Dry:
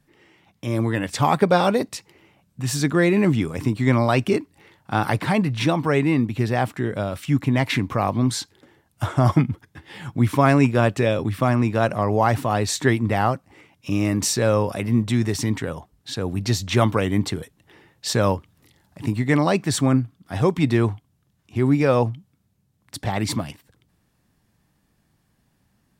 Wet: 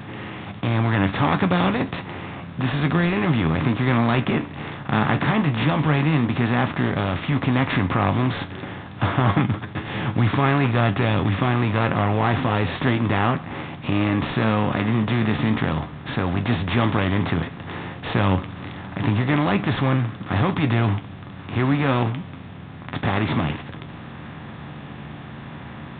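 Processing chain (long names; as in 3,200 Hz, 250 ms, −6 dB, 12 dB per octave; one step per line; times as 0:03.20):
compressor on every frequency bin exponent 0.4
parametric band 480 Hz −9.5 dB 1.3 octaves
in parallel at −8.5 dB: sample-and-hold swept by an LFO 16×, swing 60% 0.73 Hz
on the sum: flanger 0.1 Hz, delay 9.3 ms, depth 4.7 ms, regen +51%
downsampling to 8,000 Hz
level −1.5 dB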